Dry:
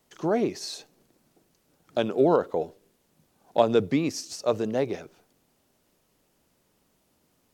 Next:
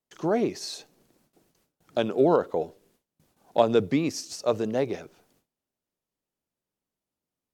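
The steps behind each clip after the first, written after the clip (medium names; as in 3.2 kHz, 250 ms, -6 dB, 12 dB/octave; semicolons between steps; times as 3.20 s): gate with hold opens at -55 dBFS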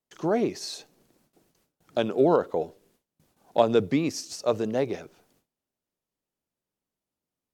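no audible change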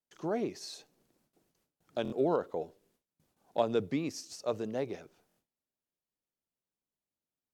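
buffer glitch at 2.03/5.28 s, samples 1024, times 3; trim -8.5 dB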